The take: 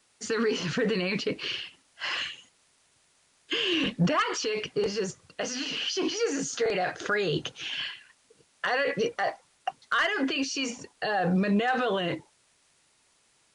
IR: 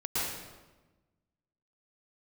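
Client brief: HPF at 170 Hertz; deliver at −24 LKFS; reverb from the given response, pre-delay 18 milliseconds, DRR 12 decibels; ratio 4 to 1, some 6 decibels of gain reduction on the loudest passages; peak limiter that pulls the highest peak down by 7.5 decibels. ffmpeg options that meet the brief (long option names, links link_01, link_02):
-filter_complex "[0:a]highpass=170,acompressor=threshold=-29dB:ratio=4,alimiter=level_in=1dB:limit=-24dB:level=0:latency=1,volume=-1dB,asplit=2[link_01][link_02];[1:a]atrim=start_sample=2205,adelay=18[link_03];[link_02][link_03]afir=irnorm=-1:irlink=0,volume=-19.5dB[link_04];[link_01][link_04]amix=inputs=2:normalize=0,volume=10dB"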